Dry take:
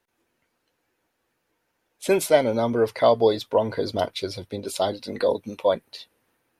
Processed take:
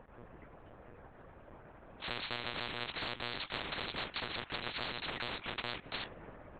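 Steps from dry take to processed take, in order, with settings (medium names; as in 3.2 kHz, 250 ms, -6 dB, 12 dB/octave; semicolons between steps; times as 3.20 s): cycle switcher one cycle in 3, muted; level-controlled noise filter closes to 1.2 kHz, open at -19.5 dBFS; compression 4:1, threshold -31 dBFS, peak gain reduction 16 dB; monotone LPC vocoder at 8 kHz 120 Hz; spectrum-flattening compressor 10:1; trim -5.5 dB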